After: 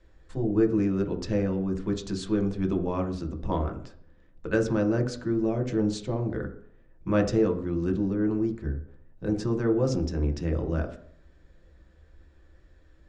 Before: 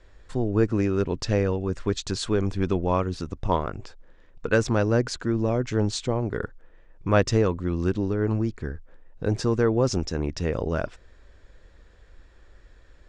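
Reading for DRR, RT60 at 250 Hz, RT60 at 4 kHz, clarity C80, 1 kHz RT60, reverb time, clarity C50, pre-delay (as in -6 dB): 2.5 dB, 0.60 s, 0.55 s, 14.5 dB, 0.55 s, 0.60 s, 10.0 dB, 3 ms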